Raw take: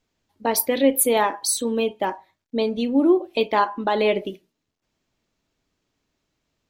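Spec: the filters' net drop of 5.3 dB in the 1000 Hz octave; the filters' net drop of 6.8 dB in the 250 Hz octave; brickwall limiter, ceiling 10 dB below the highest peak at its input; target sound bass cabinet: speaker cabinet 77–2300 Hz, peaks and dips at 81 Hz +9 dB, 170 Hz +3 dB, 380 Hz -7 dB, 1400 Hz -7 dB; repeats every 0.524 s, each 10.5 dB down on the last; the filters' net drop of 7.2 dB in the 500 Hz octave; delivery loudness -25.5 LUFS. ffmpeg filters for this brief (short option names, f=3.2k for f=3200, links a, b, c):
-af "equalizer=f=250:t=o:g=-5.5,equalizer=f=500:t=o:g=-3.5,equalizer=f=1k:t=o:g=-4,alimiter=limit=-16.5dB:level=0:latency=1,highpass=f=77:w=0.5412,highpass=f=77:w=1.3066,equalizer=f=81:t=q:w=4:g=9,equalizer=f=170:t=q:w=4:g=3,equalizer=f=380:t=q:w=4:g=-7,equalizer=f=1.4k:t=q:w=4:g=-7,lowpass=f=2.3k:w=0.5412,lowpass=f=2.3k:w=1.3066,aecho=1:1:524|1048|1572:0.299|0.0896|0.0269,volume=5dB"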